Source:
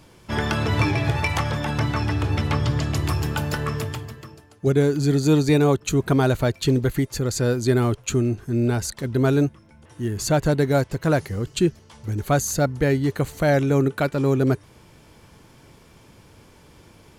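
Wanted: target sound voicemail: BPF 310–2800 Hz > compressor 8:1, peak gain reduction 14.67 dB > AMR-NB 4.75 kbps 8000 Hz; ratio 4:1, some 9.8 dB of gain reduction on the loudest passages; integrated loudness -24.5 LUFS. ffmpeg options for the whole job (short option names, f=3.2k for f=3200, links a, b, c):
-af "acompressor=threshold=-26dB:ratio=4,highpass=310,lowpass=2.8k,acompressor=threshold=-40dB:ratio=8,volume=22dB" -ar 8000 -c:a libopencore_amrnb -b:a 4750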